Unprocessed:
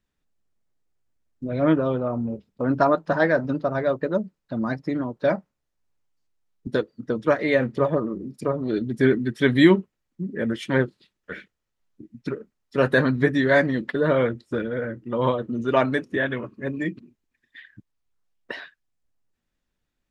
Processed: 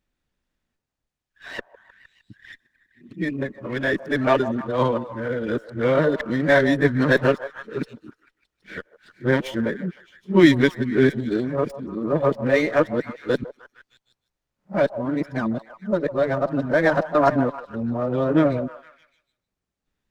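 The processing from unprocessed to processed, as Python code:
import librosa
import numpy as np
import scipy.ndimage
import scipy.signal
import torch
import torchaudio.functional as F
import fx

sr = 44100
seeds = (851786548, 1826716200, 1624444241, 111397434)

y = np.flip(x).copy()
y = fx.echo_stepped(y, sr, ms=154, hz=710.0, octaves=0.7, feedback_pct=70, wet_db=-11)
y = fx.running_max(y, sr, window=3)
y = F.gain(torch.from_numpy(y), 1.5).numpy()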